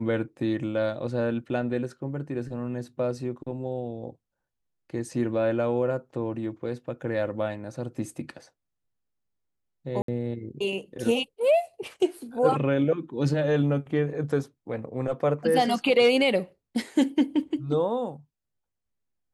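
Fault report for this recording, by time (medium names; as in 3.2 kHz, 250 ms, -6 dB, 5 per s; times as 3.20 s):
10.02–10.08 s: dropout 63 ms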